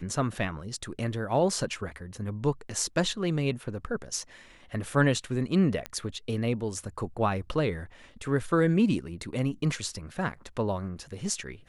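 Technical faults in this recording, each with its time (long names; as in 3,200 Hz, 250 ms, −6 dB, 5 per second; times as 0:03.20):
0:05.86: click −18 dBFS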